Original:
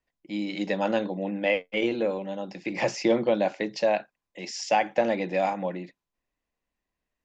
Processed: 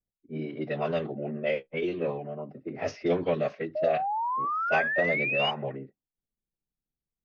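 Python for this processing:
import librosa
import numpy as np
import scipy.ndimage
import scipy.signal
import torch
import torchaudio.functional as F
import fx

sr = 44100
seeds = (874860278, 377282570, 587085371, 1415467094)

y = fx.env_lowpass(x, sr, base_hz=310.0, full_db=-19.5)
y = fx.pitch_keep_formants(y, sr, semitones=-5.0)
y = fx.spec_paint(y, sr, seeds[0], shape='rise', start_s=3.75, length_s=1.76, low_hz=600.0, high_hz=3000.0, level_db=-26.0)
y = F.gain(torch.from_numpy(y), -3.0).numpy()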